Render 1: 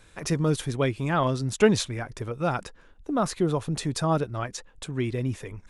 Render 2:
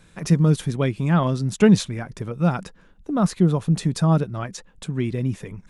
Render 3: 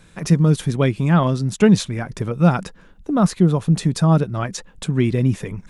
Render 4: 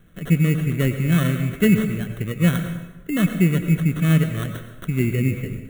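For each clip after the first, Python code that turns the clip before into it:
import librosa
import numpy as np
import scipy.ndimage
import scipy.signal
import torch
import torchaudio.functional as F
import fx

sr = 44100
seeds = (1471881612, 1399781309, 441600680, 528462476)

y1 = fx.peak_eq(x, sr, hz=180.0, db=13.0, octaves=0.67)
y2 = fx.rider(y1, sr, range_db=3, speed_s=0.5)
y2 = F.gain(torch.from_numpy(y2), 3.5).numpy()
y3 = fx.sample_hold(y2, sr, seeds[0], rate_hz=2400.0, jitter_pct=0)
y3 = fx.fixed_phaser(y3, sr, hz=2100.0, stages=4)
y3 = fx.rev_plate(y3, sr, seeds[1], rt60_s=1.1, hf_ratio=0.75, predelay_ms=80, drr_db=7.5)
y3 = F.gain(torch.from_numpy(y3), -2.0).numpy()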